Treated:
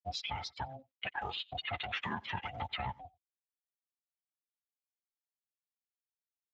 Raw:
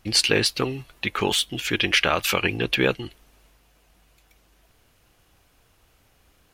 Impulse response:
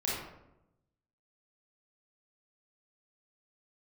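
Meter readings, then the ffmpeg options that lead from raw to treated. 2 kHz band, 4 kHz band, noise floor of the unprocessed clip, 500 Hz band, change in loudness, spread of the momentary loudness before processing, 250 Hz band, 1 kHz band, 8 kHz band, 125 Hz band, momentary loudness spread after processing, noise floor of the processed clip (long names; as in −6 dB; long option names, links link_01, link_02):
−16.5 dB, −18.0 dB, −62 dBFS, −22.5 dB, −17.0 dB, 10 LU, −21.5 dB, −8.5 dB, below −25 dB, −14.5 dB, 7 LU, below −85 dBFS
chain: -filter_complex "[0:a]aresample=16000,asoftclip=type=tanh:threshold=-14.5dB,aresample=44100,afftfilt=real='re*gte(hypot(re,im),0.112)':imag='im*gte(hypot(re,im),0.112)':win_size=1024:overlap=0.75,highpass=360,equalizer=frequency=550:width_type=q:width=4:gain=7,equalizer=frequency=2600:width_type=q:width=4:gain=-4,equalizer=frequency=3900:width_type=q:width=4:gain=-8,lowpass=frequency=5200:width=0.5412,lowpass=frequency=5200:width=1.3066,asplit=2[link_01][link_02];[link_02]adelay=90,highpass=300,lowpass=3400,asoftclip=type=hard:threshold=-20.5dB,volume=-25dB[link_03];[link_01][link_03]amix=inputs=2:normalize=0,adynamicequalizer=threshold=0.00562:dfrequency=2600:dqfactor=3.8:tfrequency=2600:tqfactor=3.8:attack=5:release=100:ratio=0.375:range=3:mode=cutabove:tftype=bell,aecho=1:1:6.4:0.47,aeval=exprs='val(0)*sin(2*PI*400*n/s)':channel_layout=same,acompressor=threshold=-33dB:ratio=16,volume=1dB" -ar 16000 -c:a libspeex -b:a 13k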